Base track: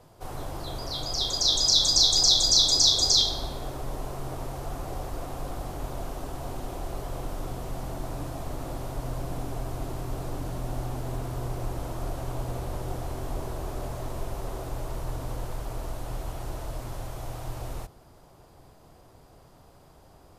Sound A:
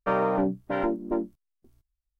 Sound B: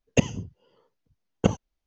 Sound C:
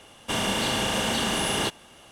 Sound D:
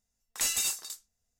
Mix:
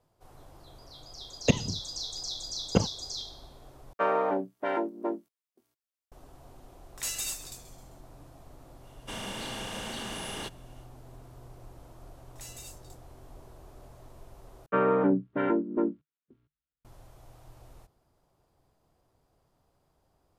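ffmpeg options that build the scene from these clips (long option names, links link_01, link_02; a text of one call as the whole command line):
ffmpeg -i bed.wav -i cue0.wav -i cue1.wav -i cue2.wav -i cue3.wav -filter_complex "[1:a]asplit=2[link_01][link_02];[4:a]asplit=2[link_03][link_04];[0:a]volume=-17dB[link_05];[2:a]acontrast=51[link_06];[link_01]highpass=380[link_07];[link_03]asplit=6[link_08][link_09][link_10][link_11][link_12][link_13];[link_09]adelay=131,afreqshift=-110,volume=-14.5dB[link_14];[link_10]adelay=262,afreqshift=-220,volume=-20dB[link_15];[link_11]adelay=393,afreqshift=-330,volume=-25.5dB[link_16];[link_12]adelay=524,afreqshift=-440,volume=-31dB[link_17];[link_13]adelay=655,afreqshift=-550,volume=-36.6dB[link_18];[link_08][link_14][link_15][link_16][link_17][link_18]amix=inputs=6:normalize=0[link_19];[link_02]highpass=120,equalizer=frequency=150:width_type=q:width=4:gain=8,equalizer=frequency=270:width_type=q:width=4:gain=6,equalizer=frequency=450:width_type=q:width=4:gain=5,equalizer=frequency=720:width_type=q:width=4:gain=-8,equalizer=frequency=1400:width_type=q:width=4:gain=5,lowpass=frequency=3400:width=0.5412,lowpass=frequency=3400:width=1.3066[link_20];[link_05]asplit=3[link_21][link_22][link_23];[link_21]atrim=end=3.934[link_24];[link_07]atrim=end=2.19,asetpts=PTS-STARTPTS,volume=-0.5dB[link_25];[link_22]atrim=start=6.116:end=14.664[link_26];[link_20]atrim=end=2.19,asetpts=PTS-STARTPTS,volume=-2dB[link_27];[link_23]atrim=start=16.846[link_28];[link_06]atrim=end=1.86,asetpts=PTS-STARTPTS,volume=-7dB,afade=type=in:duration=0.004:curve=hsin,afade=type=out:start_time=1.856:duration=0.004:curve=hsin,adelay=1310[link_29];[link_19]atrim=end=1.39,asetpts=PTS-STARTPTS,volume=-5dB,afade=type=in:duration=0.004:curve=hsin,afade=type=out:start_time=1.386:duration=0.004:curve=hsin,adelay=6620[link_30];[3:a]atrim=end=2.11,asetpts=PTS-STARTPTS,volume=-12dB,afade=type=in:duration=0.1,afade=type=out:start_time=2.01:duration=0.1,adelay=8790[link_31];[link_04]atrim=end=1.39,asetpts=PTS-STARTPTS,volume=-17.5dB,afade=type=in:duration=0.004:curve=hsin,afade=type=out:start_time=1.386:duration=0.004:curve=hsin,adelay=12000[link_32];[link_24][link_25]acrossfade=duration=0.004:curve1=hsin:curve2=hsin[link_33];[link_33][link_26]acrossfade=duration=0.004:curve1=hsin:curve2=hsin[link_34];[link_34][link_27]acrossfade=duration=0.004:curve1=hsin:curve2=hsin[link_35];[link_35][link_28]acrossfade=duration=0.004:curve1=hsin:curve2=hsin[link_36];[link_36][link_29][link_30][link_31][link_32]amix=inputs=5:normalize=0" out.wav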